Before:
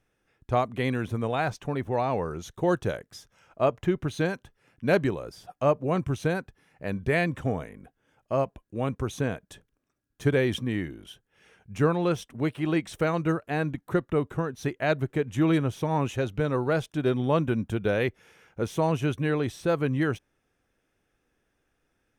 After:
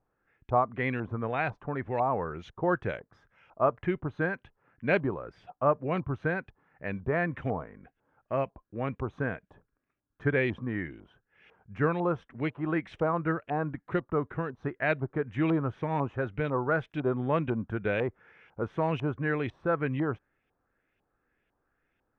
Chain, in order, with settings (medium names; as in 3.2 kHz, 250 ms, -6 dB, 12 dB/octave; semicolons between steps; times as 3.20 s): LFO low-pass saw up 2 Hz 880–2800 Hz; trim -4.5 dB